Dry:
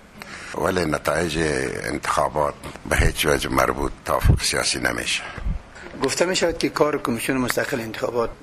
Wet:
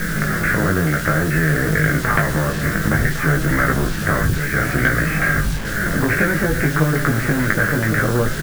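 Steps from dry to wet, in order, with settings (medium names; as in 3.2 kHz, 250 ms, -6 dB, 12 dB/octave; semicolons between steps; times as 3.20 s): local Wiener filter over 9 samples; RIAA curve playback; level-controlled noise filter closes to 2.8 kHz, open at -4.5 dBFS; harmonic-percussive split harmonic +8 dB; FFT filter 100 Hz 0 dB, 150 Hz +15 dB, 230 Hz +4 dB, 410 Hz -3 dB, 650 Hz -10 dB, 950 Hz -25 dB, 1.6 kHz +14 dB, 3.8 kHz -21 dB, 5.9 kHz +6 dB, 12 kHz +14 dB; LFO low-pass saw down 2.3 Hz 900–1900 Hz; compression 4:1, threshold -14 dBFS, peak gain reduction 21.5 dB; flange 0.58 Hz, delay 6.1 ms, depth 4.8 ms, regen +34%; bit crusher 8-bit; doubling 19 ms -3 dB; echo from a far wall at 190 m, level -15 dB; spectrum-flattening compressor 2:1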